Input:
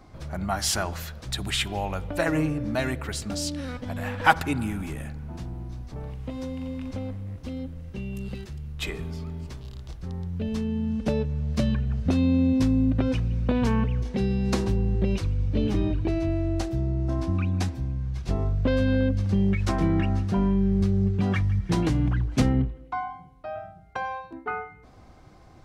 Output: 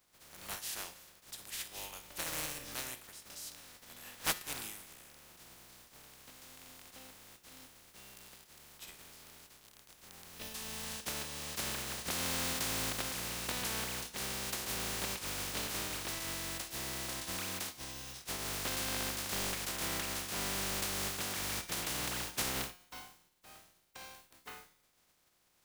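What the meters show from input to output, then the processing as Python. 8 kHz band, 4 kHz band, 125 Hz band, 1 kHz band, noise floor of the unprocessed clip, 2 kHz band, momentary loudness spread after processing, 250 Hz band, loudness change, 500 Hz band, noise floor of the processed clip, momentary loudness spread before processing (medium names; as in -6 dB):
+1.5 dB, -2.5 dB, -24.0 dB, -12.5 dB, -50 dBFS, -8.0 dB, 20 LU, -23.0 dB, -10.5 dB, -16.0 dB, -71 dBFS, 14 LU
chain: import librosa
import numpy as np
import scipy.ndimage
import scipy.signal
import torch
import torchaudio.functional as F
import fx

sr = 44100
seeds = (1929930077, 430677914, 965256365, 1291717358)

y = fx.spec_flatten(x, sr, power=0.18)
y = fx.noise_reduce_blind(y, sr, reduce_db=7)
y = fx.comb_fb(y, sr, f0_hz=180.0, decay_s=0.61, harmonics='all', damping=0.0, mix_pct=60)
y = F.gain(torch.from_numpy(y), -7.5).numpy()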